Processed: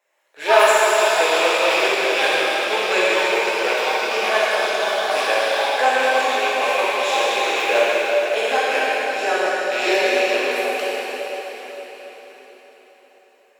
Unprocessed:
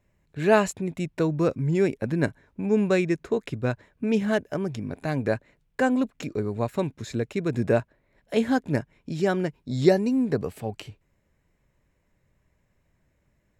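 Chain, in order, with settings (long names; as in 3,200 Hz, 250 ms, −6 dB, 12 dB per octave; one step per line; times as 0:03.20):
loose part that buzzes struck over −27 dBFS, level −19 dBFS
high-pass filter 540 Hz 24 dB per octave
in parallel at −11.5 dB: soft clipping −23.5 dBFS, distortion −9 dB
on the sum: delay with pitch and tempo change per echo 127 ms, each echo +6 semitones, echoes 2, each echo −6 dB
dense smooth reverb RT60 4.9 s, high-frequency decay 0.9×, DRR −9 dB
level +1.5 dB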